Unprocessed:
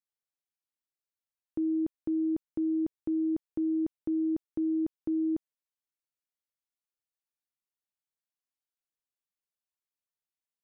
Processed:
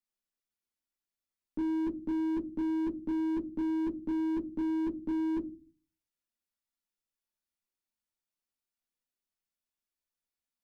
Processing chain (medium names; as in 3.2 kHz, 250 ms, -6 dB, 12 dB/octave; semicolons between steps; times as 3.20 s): graphic EQ 125/250/500 Hz -5/+3/-3 dB; reverberation RT60 0.30 s, pre-delay 3 ms, DRR -2.5 dB; slew-rate limiter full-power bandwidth 17 Hz; trim -4 dB